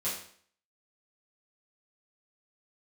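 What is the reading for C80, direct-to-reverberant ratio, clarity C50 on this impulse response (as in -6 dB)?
8.0 dB, -11.0 dB, 4.0 dB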